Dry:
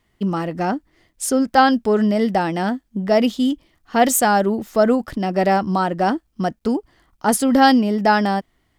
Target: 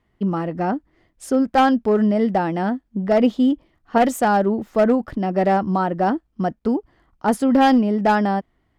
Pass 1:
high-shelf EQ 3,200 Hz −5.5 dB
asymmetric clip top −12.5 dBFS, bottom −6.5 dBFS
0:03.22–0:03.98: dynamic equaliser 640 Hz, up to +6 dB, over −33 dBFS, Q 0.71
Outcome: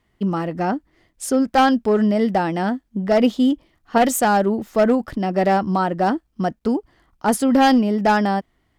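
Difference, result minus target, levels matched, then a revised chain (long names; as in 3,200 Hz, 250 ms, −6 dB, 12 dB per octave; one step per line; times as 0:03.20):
8,000 Hz band +8.0 dB
high-shelf EQ 3,200 Hz −15.5 dB
asymmetric clip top −12.5 dBFS, bottom −6.5 dBFS
0:03.22–0:03.98: dynamic equaliser 640 Hz, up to +6 dB, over −33 dBFS, Q 0.71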